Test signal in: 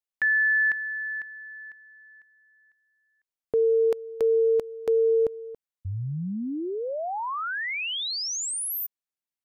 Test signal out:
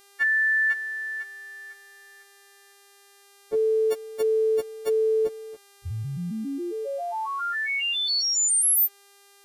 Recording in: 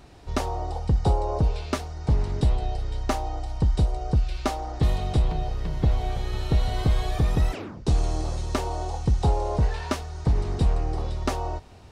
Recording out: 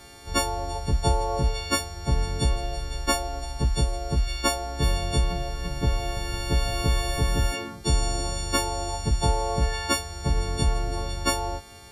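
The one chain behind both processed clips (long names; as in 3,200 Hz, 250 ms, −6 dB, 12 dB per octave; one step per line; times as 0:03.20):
every partial snapped to a pitch grid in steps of 4 semitones
hum with harmonics 400 Hz, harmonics 33, −56 dBFS −2 dB per octave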